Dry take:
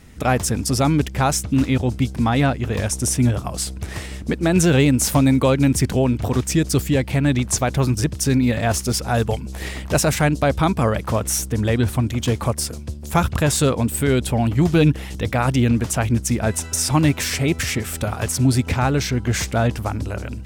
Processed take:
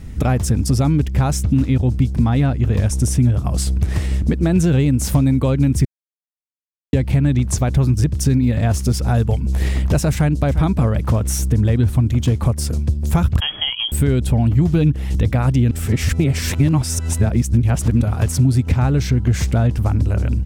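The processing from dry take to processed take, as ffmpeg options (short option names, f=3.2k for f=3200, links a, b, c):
-filter_complex "[0:a]asplit=2[a][b];[b]afade=t=in:st=10.13:d=0.01,afade=t=out:st=10.54:d=0.01,aecho=0:1:350|700:0.211349|0.0422698[c];[a][c]amix=inputs=2:normalize=0,asettb=1/sr,asplit=3[d][e][f];[d]atrim=end=13.404[g];[e]atrim=start=13.4:end=13.92,asetpts=PTS-STARTPTS,afade=t=in:d=0.004:c=qsin,afade=t=out:st=0.516:d=0.004:c=qsin,lowpass=f=2.9k:t=q:w=0.5098,lowpass=f=2.9k:t=q:w=0.6013,lowpass=f=2.9k:t=q:w=0.9,lowpass=f=2.9k:t=q:w=2.563,afreqshift=-3400[h];[f]atrim=start=13.916[i];[g][h]acrossfade=d=0.004:c1=hsin:c2=qsin[j];[j][i]acrossfade=d=0.004:c1=qsin:c2=hsin,asplit=5[k][l][m][n][o];[k]atrim=end=5.85,asetpts=PTS-STARTPTS,afade=t=out:st=5.846:d=0.004:c=hsin[p];[l]atrim=start=5.85:end=6.93,asetpts=PTS-STARTPTS,volume=0[q];[m]atrim=start=6.93:end=15.712,asetpts=PTS-STARTPTS,afade=t=in:d=0.004:c=hsin[r];[n]atrim=start=15.708:end=18.012,asetpts=PTS-STARTPTS,areverse[s];[o]atrim=start=18.008[t];[p][q][r]concat=n=3:v=0:a=1[u];[u][s]acrossfade=d=0.004:c1=hsin:c2=hsin[v];[v][t]acrossfade=d=0.004:c1=hsin:c2=hsin,lowshelf=f=170:g=8.5,acompressor=threshold=-21dB:ratio=3,lowshelf=f=370:g=7,volume=1dB"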